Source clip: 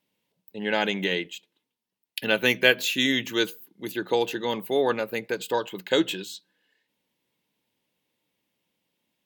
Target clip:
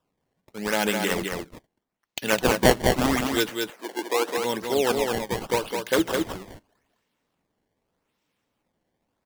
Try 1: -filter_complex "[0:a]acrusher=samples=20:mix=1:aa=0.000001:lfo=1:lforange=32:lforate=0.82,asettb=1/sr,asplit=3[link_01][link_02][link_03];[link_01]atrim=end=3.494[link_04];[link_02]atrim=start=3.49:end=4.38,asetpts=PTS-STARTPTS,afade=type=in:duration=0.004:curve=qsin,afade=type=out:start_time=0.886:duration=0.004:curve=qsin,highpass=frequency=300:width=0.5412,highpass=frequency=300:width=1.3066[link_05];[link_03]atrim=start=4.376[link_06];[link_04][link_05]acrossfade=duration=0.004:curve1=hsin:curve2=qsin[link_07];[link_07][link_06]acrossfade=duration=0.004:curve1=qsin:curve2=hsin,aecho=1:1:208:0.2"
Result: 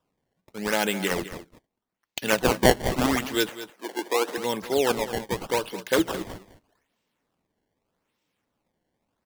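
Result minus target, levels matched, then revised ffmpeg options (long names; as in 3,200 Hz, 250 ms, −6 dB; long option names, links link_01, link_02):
echo-to-direct −9.5 dB
-filter_complex "[0:a]acrusher=samples=20:mix=1:aa=0.000001:lfo=1:lforange=32:lforate=0.82,asettb=1/sr,asplit=3[link_01][link_02][link_03];[link_01]atrim=end=3.494[link_04];[link_02]atrim=start=3.49:end=4.38,asetpts=PTS-STARTPTS,afade=type=in:duration=0.004:curve=qsin,afade=type=out:start_time=0.886:duration=0.004:curve=qsin,highpass=frequency=300:width=0.5412,highpass=frequency=300:width=1.3066[link_05];[link_03]atrim=start=4.376[link_06];[link_04][link_05]acrossfade=duration=0.004:curve1=hsin:curve2=qsin[link_07];[link_07][link_06]acrossfade=duration=0.004:curve1=qsin:curve2=hsin,aecho=1:1:208:0.596"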